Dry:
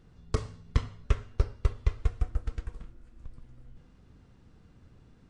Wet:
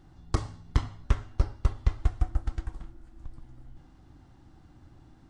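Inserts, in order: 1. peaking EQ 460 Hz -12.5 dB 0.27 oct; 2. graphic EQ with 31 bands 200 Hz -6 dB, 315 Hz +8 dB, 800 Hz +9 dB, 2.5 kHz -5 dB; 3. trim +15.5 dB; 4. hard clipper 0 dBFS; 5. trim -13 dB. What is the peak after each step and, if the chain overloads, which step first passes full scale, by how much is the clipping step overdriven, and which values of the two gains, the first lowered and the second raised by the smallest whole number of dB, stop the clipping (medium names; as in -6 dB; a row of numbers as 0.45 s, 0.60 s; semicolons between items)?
-12.0 dBFS, -11.5 dBFS, +4.0 dBFS, 0.0 dBFS, -13.0 dBFS; step 3, 4.0 dB; step 3 +11.5 dB, step 5 -9 dB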